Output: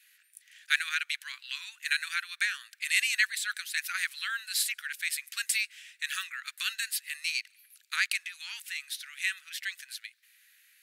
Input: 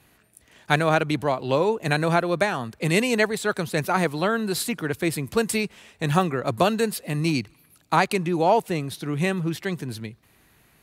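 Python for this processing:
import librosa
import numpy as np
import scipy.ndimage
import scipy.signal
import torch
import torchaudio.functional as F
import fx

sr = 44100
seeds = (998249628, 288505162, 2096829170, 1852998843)

y = scipy.signal.sosfilt(scipy.signal.butter(8, 1600.0, 'highpass', fs=sr, output='sos'), x)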